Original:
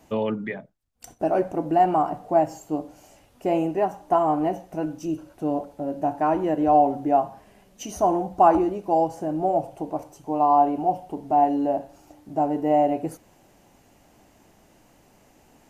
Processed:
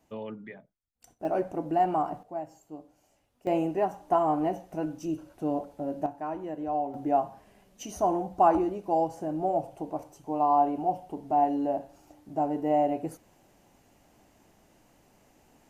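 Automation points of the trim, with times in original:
-13 dB
from 1.25 s -6 dB
from 2.23 s -16 dB
from 3.47 s -4 dB
from 6.06 s -12.5 dB
from 6.94 s -5 dB

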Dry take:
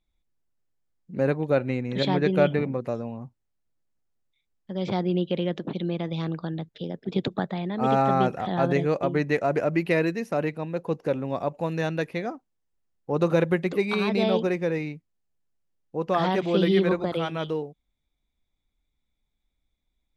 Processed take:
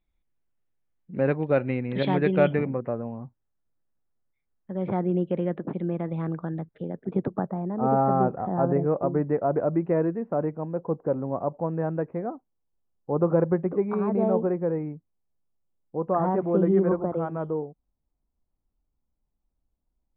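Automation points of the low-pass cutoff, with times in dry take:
low-pass 24 dB/octave
2.45 s 3 kHz
2.95 s 1.8 kHz
6.97 s 1.8 kHz
7.50 s 1.2 kHz

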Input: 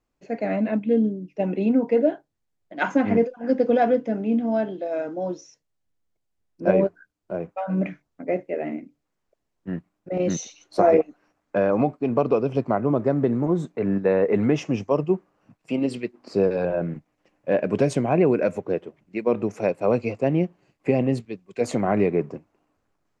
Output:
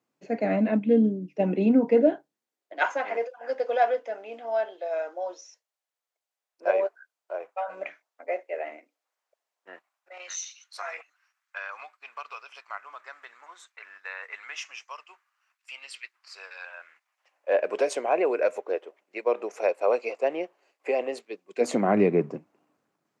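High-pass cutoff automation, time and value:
high-pass 24 dB/octave
2.10 s 140 Hz
2.96 s 580 Hz
9.69 s 580 Hz
10.39 s 1.3 kHz
16.93 s 1.3 kHz
17.55 s 460 Hz
21.20 s 460 Hz
21.98 s 140 Hz

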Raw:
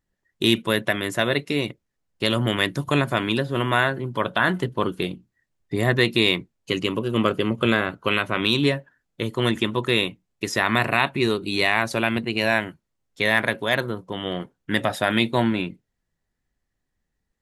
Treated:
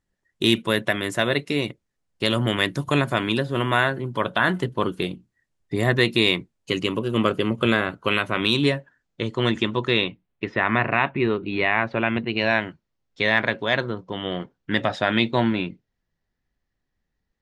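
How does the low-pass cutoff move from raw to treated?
low-pass 24 dB/octave
8.55 s 11 kHz
9.21 s 6.8 kHz
9.79 s 6.8 kHz
10.52 s 2.7 kHz
12.03 s 2.7 kHz
12.66 s 5.9 kHz

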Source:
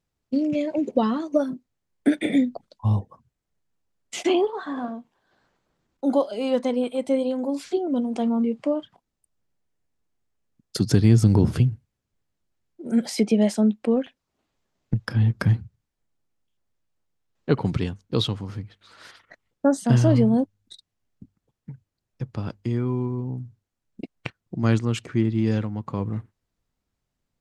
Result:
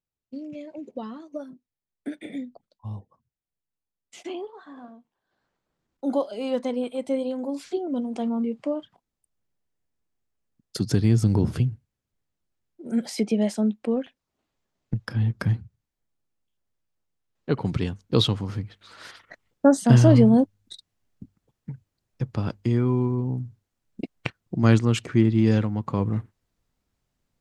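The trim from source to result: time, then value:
4.97 s -13.5 dB
6.12 s -3.5 dB
17.54 s -3.5 dB
18.15 s +3 dB

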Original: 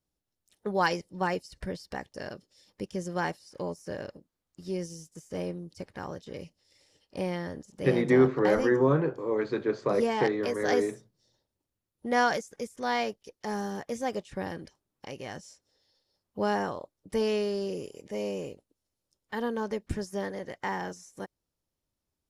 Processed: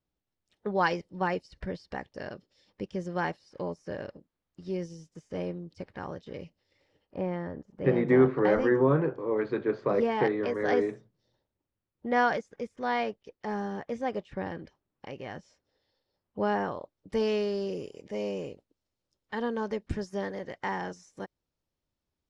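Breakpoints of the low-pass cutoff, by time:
6.36 s 3.7 kHz
7.17 s 1.6 kHz
7.72 s 1.6 kHz
8.34 s 2.9 kHz
16.58 s 2.9 kHz
17.17 s 5.1 kHz

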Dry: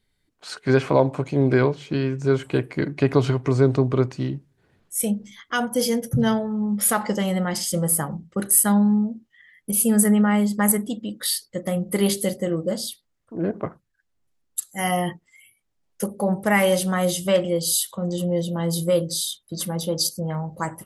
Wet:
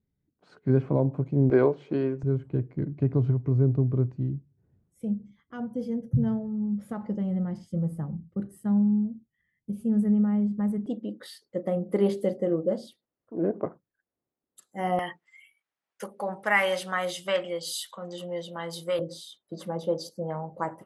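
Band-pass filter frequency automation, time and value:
band-pass filter, Q 0.85
150 Hz
from 1.50 s 470 Hz
from 2.23 s 100 Hz
from 10.86 s 430 Hz
from 14.99 s 1.6 kHz
from 18.99 s 580 Hz

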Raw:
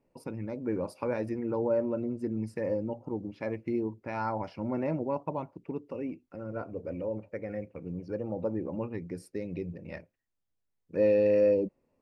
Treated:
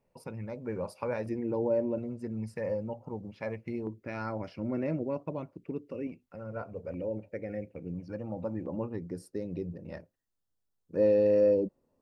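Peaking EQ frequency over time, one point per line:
peaking EQ -11.5 dB 0.53 oct
300 Hz
from 1.26 s 1.3 kHz
from 1.98 s 310 Hz
from 3.87 s 880 Hz
from 6.07 s 310 Hz
from 6.94 s 1.1 kHz
from 7.94 s 410 Hz
from 8.66 s 2.3 kHz

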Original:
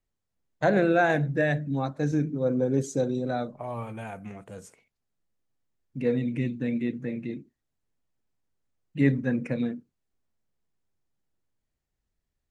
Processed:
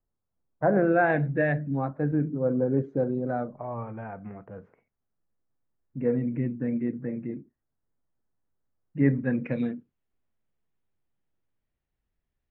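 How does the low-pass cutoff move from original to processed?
low-pass 24 dB/octave
0.73 s 1.4 kHz
1.21 s 2.7 kHz
2.08 s 1.7 kHz
8.97 s 1.7 kHz
9.50 s 3.3 kHz

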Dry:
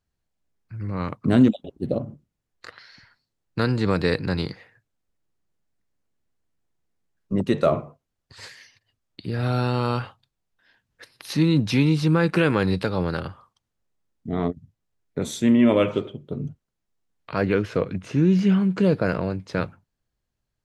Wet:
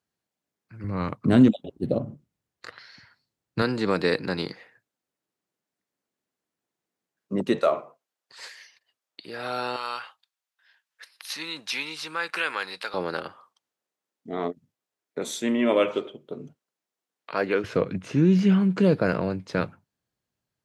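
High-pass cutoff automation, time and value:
190 Hz
from 0.84 s 86 Hz
from 3.62 s 230 Hz
from 7.59 s 520 Hz
from 9.76 s 1.1 kHz
from 12.94 s 360 Hz
from 17.64 s 120 Hz

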